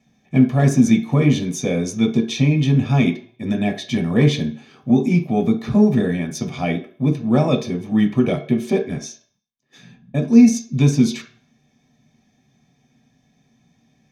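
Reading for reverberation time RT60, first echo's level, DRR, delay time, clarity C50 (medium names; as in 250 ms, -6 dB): 0.45 s, no echo, 2.5 dB, no echo, 11.0 dB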